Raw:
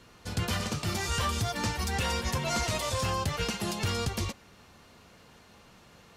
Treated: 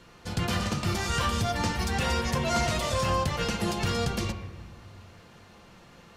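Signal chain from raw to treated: treble shelf 7.6 kHz -5.5 dB; on a send: reverberation RT60 1.3 s, pre-delay 6 ms, DRR 6 dB; on the sum: trim +2 dB

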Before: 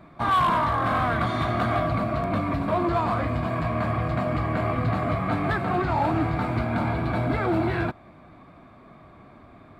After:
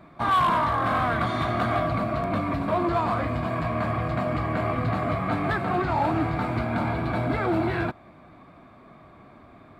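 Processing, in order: bass shelf 130 Hz -3.5 dB

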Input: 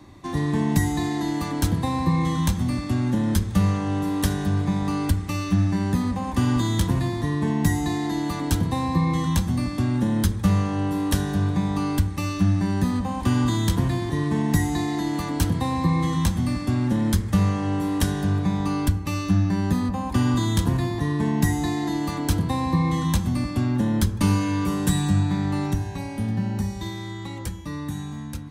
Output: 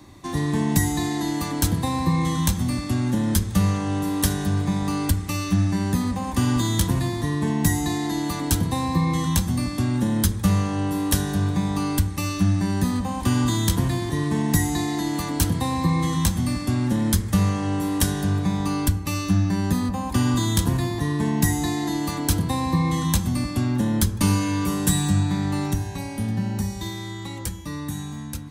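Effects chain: treble shelf 5.1 kHz +9 dB

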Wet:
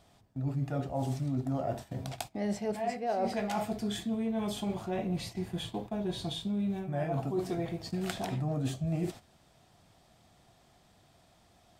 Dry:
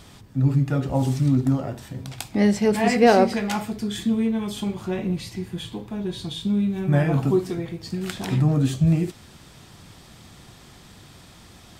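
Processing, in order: gate -37 dBFS, range -13 dB; peaking EQ 680 Hz +12 dB 0.53 oct; reverse; compression 16:1, threshold -24 dBFS, peak gain reduction 21.5 dB; reverse; trim -4.5 dB

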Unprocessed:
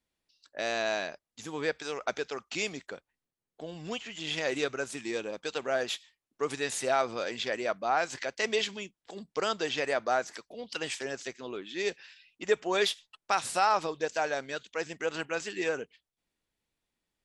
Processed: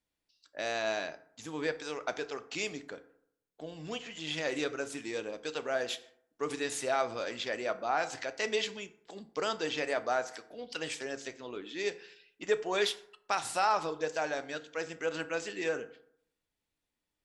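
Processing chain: FDN reverb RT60 0.68 s, low-frequency decay 1×, high-frequency decay 0.5×, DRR 10 dB; trim -3 dB

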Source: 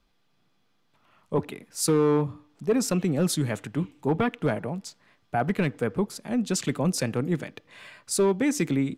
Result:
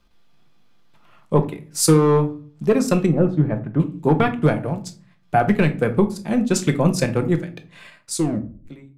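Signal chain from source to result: fade out at the end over 1.82 s; 3.06–3.80 s: low-pass 1.2 kHz 12 dB/octave; transient shaper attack +3 dB, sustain -10 dB; 8.12 s: tape stop 0.54 s; simulated room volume 260 m³, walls furnished, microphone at 0.86 m; trim +5.5 dB

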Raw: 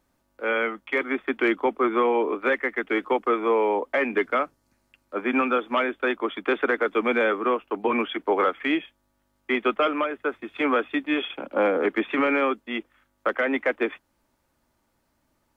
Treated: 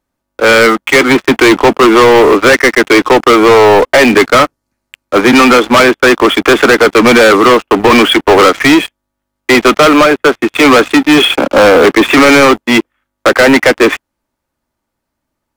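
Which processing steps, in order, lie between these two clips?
waveshaping leveller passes 5; trim +7.5 dB

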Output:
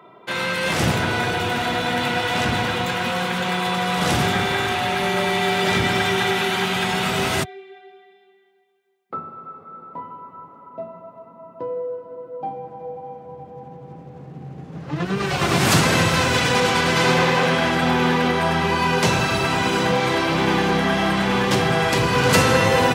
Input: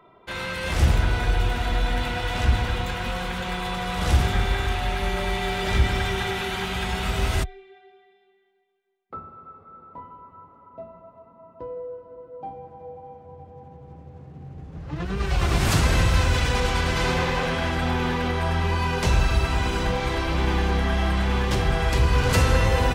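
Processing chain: high-pass 130 Hz 24 dB/octave; trim +7 dB

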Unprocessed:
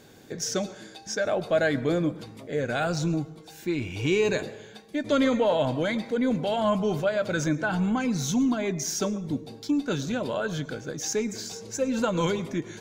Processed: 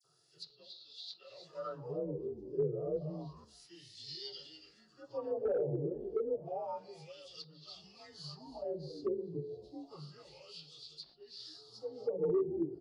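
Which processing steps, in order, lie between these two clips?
frequency axis rescaled in octaves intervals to 90%; FFT filter 100 Hz 0 dB, 150 Hz +7 dB, 220 Hz -22 dB, 350 Hz -6 dB, 810 Hz -12 dB, 2.2 kHz -30 dB, 4.5 kHz +6 dB, 8.1 kHz +11 dB; on a send: frequency-shifting echo 278 ms, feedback 42%, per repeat -93 Hz, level -10.5 dB; on the sum: wah-wah 0.3 Hz 370–3600 Hz, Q 5.2; phase dispersion lows, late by 45 ms, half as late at 2.8 kHz; wavefolder -35.5 dBFS; low-pass that closes with the level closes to 730 Hz, closed at -41 dBFS; harmonic-percussive split percussive -7 dB; 2.96–3.45 s: three bands compressed up and down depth 70%; trim +11.5 dB

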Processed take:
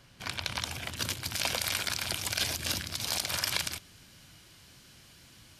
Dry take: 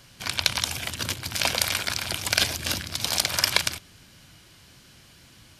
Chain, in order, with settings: treble shelf 3.5 kHz -7 dB, from 0.96 s +2.5 dB; peak limiter -10.5 dBFS, peak gain reduction 9 dB; trim -4 dB

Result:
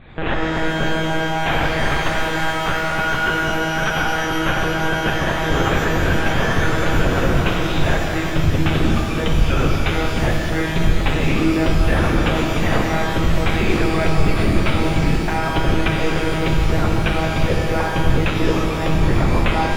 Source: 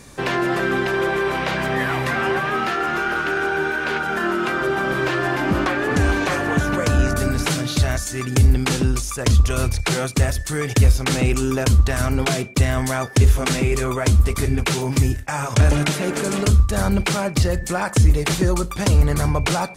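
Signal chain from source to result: high-pass 43 Hz; monotone LPC vocoder at 8 kHz 160 Hz; loudness maximiser +12 dB; pitch-shifted reverb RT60 3.1 s, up +12 st, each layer -8 dB, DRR -1 dB; trim -10 dB

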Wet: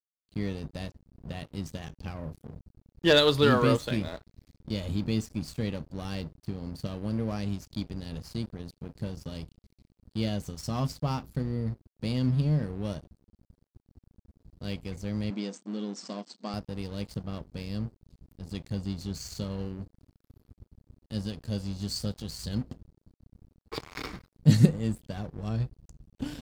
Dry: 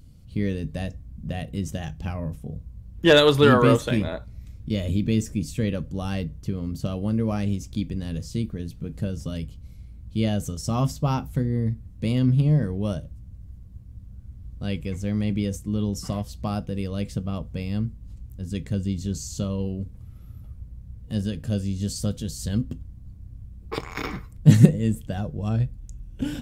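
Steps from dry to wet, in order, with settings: peaking EQ 4.5 kHz +11.5 dB 0.38 oct; crossover distortion -38 dBFS; 15.30–16.54 s: brick-wall FIR band-pass 180–8600 Hz; trim -5.5 dB

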